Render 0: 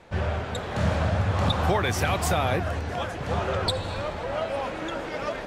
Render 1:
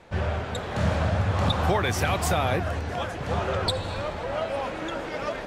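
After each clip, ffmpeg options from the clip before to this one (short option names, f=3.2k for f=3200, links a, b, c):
-af anull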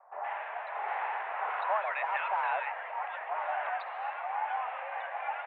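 -filter_complex "[0:a]acrossover=split=1100[a][b];[b]adelay=120[c];[a][c]amix=inputs=2:normalize=0,highpass=f=400:t=q:w=0.5412,highpass=f=400:t=q:w=1.307,lowpass=f=2.3k:t=q:w=0.5176,lowpass=f=2.3k:t=q:w=0.7071,lowpass=f=2.3k:t=q:w=1.932,afreqshift=220,volume=-3dB"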